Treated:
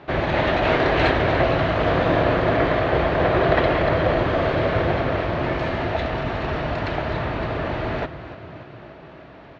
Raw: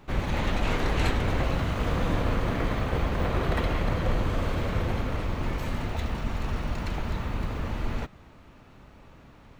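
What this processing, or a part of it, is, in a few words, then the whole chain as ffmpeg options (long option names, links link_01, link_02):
frequency-shifting delay pedal into a guitar cabinet: -filter_complex "[0:a]asplit=7[link_01][link_02][link_03][link_04][link_05][link_06][link_07];[link_02]adelay=291,afreqshift=34,volume=-14dB[link_08];[link_03]adelay=582,afreqshift=68,volume=-18.6dB[link_09];[link_04]adelay=873,afreqshift=102,volume=-23.2dB[link_10];[link_05]adelay=1164,afreqshift=136,volume=-27.7dB[link_11];[link_06]adelay=1455,afreqshift=170,volume=-32.3dB[link_12];[link_07]adelay=1746,afreqshift=204,volume=-36.9dB[link_13];[link_01][link_08][link_09][link_10][link_11][link_12][link_13]amix=inputs=7:normalize=0,highpass=83,equalizer=frequency=87:width_type=q:width=4:gain=-5,equalizer=frequency=210:width_type=q:width=4:gain=-8,equalizer=frequency=360:width_type=q:width=4:gain=5,equalizer=frequency=650:width_type=q:width=4:gain=10,equalizer=frequency=1700:width_type=q:width=4:gain=5,lowpass=frequency=4400:width=0.5412,lowpass=frequency=4400:width=1.3066,volume=7.5dB"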